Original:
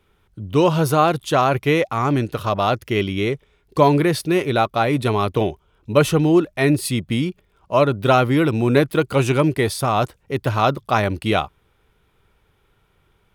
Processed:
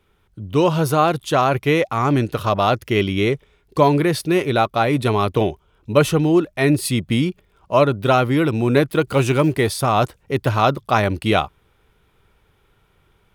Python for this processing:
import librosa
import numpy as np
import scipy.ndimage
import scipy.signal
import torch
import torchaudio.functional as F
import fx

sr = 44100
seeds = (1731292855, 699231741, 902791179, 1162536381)

p1 = fx.law_mismatch(x, sr, coded='mu', at=(9.07, 9.67))
p2 = fx.rider(p1, sr, range_db=4, speed_s=0.5)
p3 = p1 + F.gain(torch.from_numpy(p2), 3.0).numpy()
y = F.gain(torch.from_numpy(p3), -7.0).numpy()